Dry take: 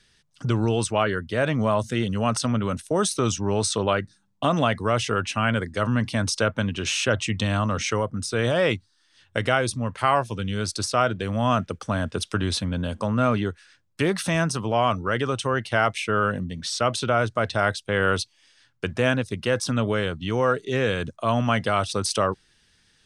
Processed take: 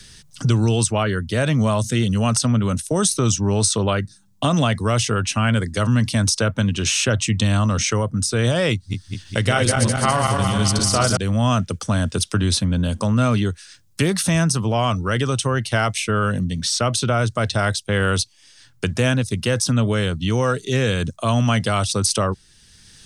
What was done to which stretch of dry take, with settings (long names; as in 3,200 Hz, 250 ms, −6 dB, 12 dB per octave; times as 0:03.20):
0:08.73–0:11.17: feedback delay that plays each chunk backwards 103 ms, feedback 73%, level −3 dB
whole clip: bass and treble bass +8 dB, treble +11 dB; multiband upward and downward compressor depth 40%